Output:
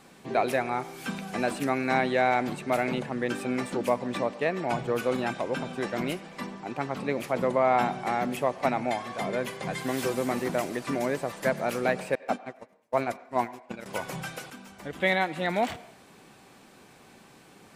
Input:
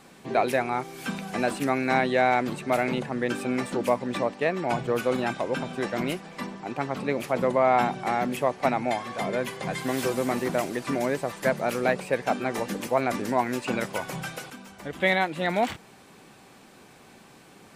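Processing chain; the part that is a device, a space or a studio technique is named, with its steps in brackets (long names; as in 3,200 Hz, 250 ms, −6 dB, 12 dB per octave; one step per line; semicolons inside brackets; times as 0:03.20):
0:12.15–0:13.86: noise gate −24 dBFS, range −41 dB
filtered reverb send (on a send: high-pass filter 380 Hz 12 dB per octave + low-pass filter 3,800 Hz 12 dB per octave + convolution reverb RT60 0.70 s, pre-delay 79 ms, DRR 17.5 dB)
on the sum: level −2 dB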